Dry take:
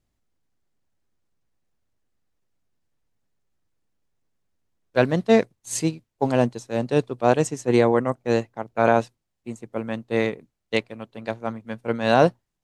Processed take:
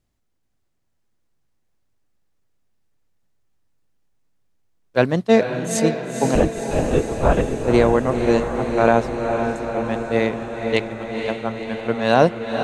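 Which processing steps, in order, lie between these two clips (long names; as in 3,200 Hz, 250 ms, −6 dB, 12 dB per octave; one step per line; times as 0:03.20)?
0:06.35–0:07.64: linear-prediction vocoder at 8 kHz whisper
feedback delay with all-pass diffusion 497 ms, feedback 67%, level −6 dB
level +2 dB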